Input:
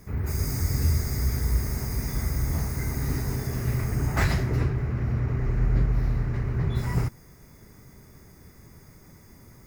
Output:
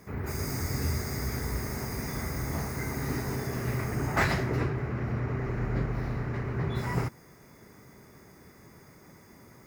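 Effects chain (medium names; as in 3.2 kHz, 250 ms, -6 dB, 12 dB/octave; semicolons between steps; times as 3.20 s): high-pass 300 Hz 6 dB/octave; treble shelf 3.8 kHz -8 dB; trim +3.5 dB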